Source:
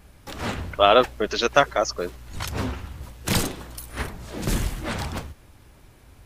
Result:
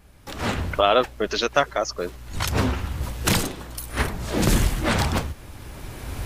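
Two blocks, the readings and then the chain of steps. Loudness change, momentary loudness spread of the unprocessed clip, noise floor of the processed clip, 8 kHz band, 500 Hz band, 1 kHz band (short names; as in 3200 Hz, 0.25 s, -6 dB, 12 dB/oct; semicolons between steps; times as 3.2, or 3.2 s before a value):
+0.5 dB, 18 LU, -44 dBFS, +3.0 dB, -1.0 dB, -1.0 dB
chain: recorder AGC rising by 12 dB/s; gain -2.5 dB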